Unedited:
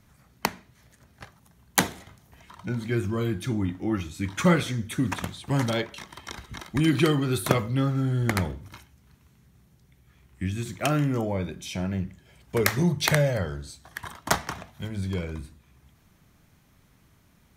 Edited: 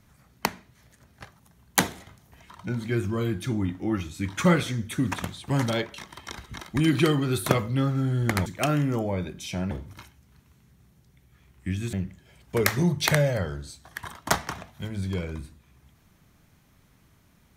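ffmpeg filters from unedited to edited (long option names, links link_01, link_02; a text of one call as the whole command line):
ffmpeg -i in.wav -filter_complex "[0:a]asplit=4[link_01][link_02][link_03][link_04];[link_01]atrim=end=8.462[link_05];[link_02]atrim=start=10.678:end=11.932[link_06];[link_03]atrim=start=8.458:end=10.682[link_07];[link_04]atrim=start=11.928[link_08];[link_05][link_06]acrossfade=duration=0.004:curve1=hsin:curve2=hsin[link_09];[link_09][link_07]acrossfade=duration=0.004:curve1=hsin:curve2=hsin[link_10];[link_10][link_08]acrossfade=duration=0.004:curve1=hsin:curve2=hsin" out.wav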